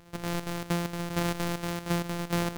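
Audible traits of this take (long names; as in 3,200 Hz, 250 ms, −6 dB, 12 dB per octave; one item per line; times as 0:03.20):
a buzz of ramps at a fixed pitch in blocks of 256 samples
chopped level 4.3 Hz, depth 65%, duty 70%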